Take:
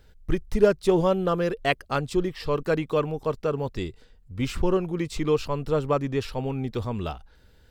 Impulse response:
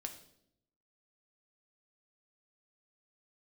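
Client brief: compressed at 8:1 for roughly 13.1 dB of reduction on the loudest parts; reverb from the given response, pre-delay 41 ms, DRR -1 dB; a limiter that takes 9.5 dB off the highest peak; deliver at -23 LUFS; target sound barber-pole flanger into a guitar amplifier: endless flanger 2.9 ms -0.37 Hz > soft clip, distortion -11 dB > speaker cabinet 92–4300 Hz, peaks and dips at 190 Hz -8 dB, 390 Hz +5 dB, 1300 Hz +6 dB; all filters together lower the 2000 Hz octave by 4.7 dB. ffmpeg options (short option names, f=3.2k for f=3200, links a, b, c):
-filter_complex "[0:a]equalizer=f=2k:t=o:g=-8.5,acompressor=threshold=-26dB:ratio=8,alimiter=level_in=3dB:limit=-24dB:level=0:latency=1,volume=-3dB,asplit=2[a][b];[1:a]atrim=start_sample=2205,adelay=41[c];[b][c]afir=irnorm=-1:irlink=0,volume=3.5dB[d];[a][d]amix=inputs=2:normalize=0,asplit=2[e][f];[f]adelay=2.9,afreqshift=-0.37[g];[e][g]amix=inputs=2:normalize=1,asoftclip=threshold=-33.5dB,highpass=92,equalizer=f=190:t=q:w=4:g=-8,equalizer=f=390:t=q:w=4:g=5,equalizer=f=1.3k:t=q:w=4:g=6,lowpass=f=4.3k:w=0.5412,lowpass=f=4.3k:w=1.3066,volume=17dB"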